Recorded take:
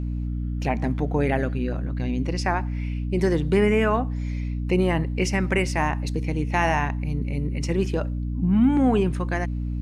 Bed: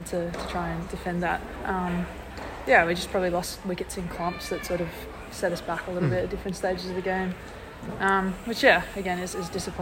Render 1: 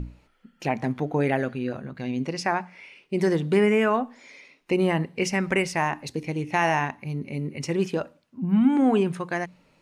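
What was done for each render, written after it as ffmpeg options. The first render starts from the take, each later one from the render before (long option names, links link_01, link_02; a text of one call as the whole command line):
ffmpeg -i in.wav -af "bandreject=frequency=60:width_type=h:width=6,bandreject=frequency=120:width_type=h:width=6,bandreject=frequency=180:width_type=h:width=6,bandreject=frequency=240:width_type=h:width=6,bandreject=frequency=300:width_type=h:width=6" out.wav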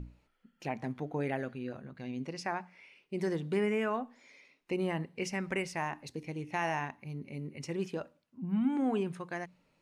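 ffmpeg -i in.wav -af "volume=-10.5dB" out.wav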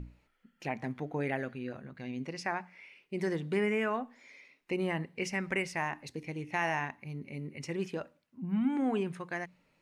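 ffmpeg -i in.wav -af "equalizer=frequency=2000:width=1.8:gain=4.5" out.wav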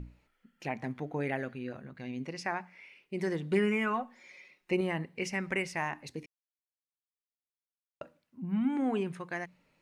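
ffmpeg -i in.wav -filter_complex "[0:a]asettb=1/sr,asplit=3[link_01][link_02][link_03];[link_01]atrim=end=3.514[link_04];[link_02]atrim=start=3.51:end=4.81,asetpts=PTS-STARTPTS,afade=type=in:duration=0.004:curve=qsin,afade=type=out:start_time=1.296:duration=0.004:curve=qsin,aecho=1:1:5.5:0.65,atrim=end_sample=57330[link_05];[link_03]atrim=start=4.806[link_06];[link_04][link_05]acrossfade=duration=0.004:curve1=hsin:curve2=qsin[link_07];[link_07][link_06]acrossfade=duration=0.004:curve1=qsin:curve2=hsin,asplit=3[link_08][link_09][link_10];[link_08]atrim=end=6.26,asetpts=PTS-STARTPTS,afade=type=out:start_time=6.256:duration=0.004:curve=hsin[link_11];[link_09]atrim=start=6.26:end=8.01,asetpts=PTS-STARTPTS,volume=0[link_12];[link_10]atrim=start=8.01,asetpts=PTS-STARTPTS,afade=type=in:duration=0.004:curve=hsin[link_13];[link_11][link_12][link_13]concat=n=3:v=0:a=1" out.wav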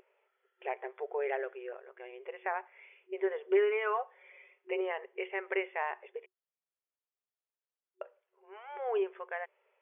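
ffmpeg -i in.wav -af "aemphasis=mode=reproduction:type=riaa,afftfilt=real='re*between(b*sr/4096,370,3500)':imag='im*between(b*sr/4096,370,3500)':win_size=4096:overlap=0.75" out.wav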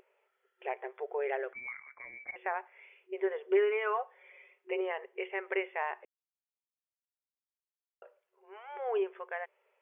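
ffmpeg -i in.wav -filter_complex "[0:a]asettb=1/sr,asplit=3[link_01][link_02][link_03];[link_01]atrim=end=1.534[link_04];[link_02]atrim=start=1.53:end=2.36,asetpts=PTS-STARTPTS,afade=type=in:duration=0.004:curve=qsin,afade=type=out:start_time=0.826:duration=0.004:curve=qsin,lowpass=frequency=2300:width_type=q:width=0.5098,lowpass=frequency=2300:width_type=q:width=0.6013,lowpass=frequency=2300:width_type=q:width=0.9,lowpass=frequency=2300:width_type=q:width=2.563,afreqshift=-2700[link_05];[link_03]atrim=start=2.356[link_06];[link_04][link_05]acrossfade=duration=0.004:curve1=hsin:curve2=qsin[link_07];[link_07][link_06]acrossfade=duration=0.004:curve1=qsin:curve2=hsin,asplit=3[link_08][link_09][link_10];[link_08]atrim=end=6.05,asetpts=PTS-STARTPTS,afade=type=out:start_time=6.046:duration=0.004:curve=hsin[link_11];[link_09]atrim=start=6.05:end=8.02,asetpts=PTS-STARTPTS,volume=0[link_12];[link_10]atrim=start=8.02,asetpts=PTS-STARTPTS,afade=type=in:duration=0.004:curve=hsin[link_13];[link_11][link_12][link_13]concat=n=3:v=0:a=1" out.wav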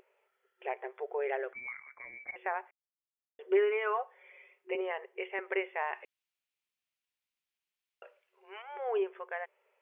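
ffmpeg -i in.wav -filter_complex "[0:a]asettb=1/sr,asplit=3[link_01][link_02][link_03];[link_01]atrim=end=4.754[link_04];[link_02]atrim=start=4.75:end=5.39,asetpts=PTS-STARTPTS,afade=type=in:duration=0.004:curve=qsin,afade=type=out:start_time=0.636:duration=0.004:curve=qsin,highpass=320[link_05];[link_03]atrim=start=5.386[link_06];[link_04][link_05]acrossfade=duration=0.004:curve1=hsin:curve2=qsin[link_07];[link_07][link_06]acrossfade=duration=0.004:curve1=qsin:curve2=hsin,asettb=1/sr,asplit=3[link_08][link_09][link_10];[link_08]atrim=end=5.934[link_11];[link_09]atrim=start=5.93:end=8.62,asetpts=PTS-STARTPTS,afade=type=in:duration=0.004:curve=qsin,afade=type=out:start_time=2.686:duration=0.004:curve=qsin,equalizer=frequency=2600:width=1:gain=12.5[link_12];[link_10]atrim=start=8.616[link_13];[link_11][link_12]acrossfade=duration=0.004:curve1=hsin:curve2=qsin[link_14];[link_14][link_13]acrossfade=duration=0.004:curve1=qsin:curve2=hsin,asplit=3[link_15][link_16][link_17];[link_15]atrim=end=2.71,asetpts=PTS-STARTPTS,afade=type=out:start_time=2.706:duration=0.004:curve=hsin[link_18];[link_16]atrim=start=2.71:end=3.39,asetpts=PTS-STARTPTS,volume=0[link_19];[link_17]atrim=start=3.39,asetpts=PTS-STARTPTS,afade=type=in:duration=0.004:curve=hsin[link_20];[link_18][link_19][link_20]concat=n=3:v=0:a=1" out.wav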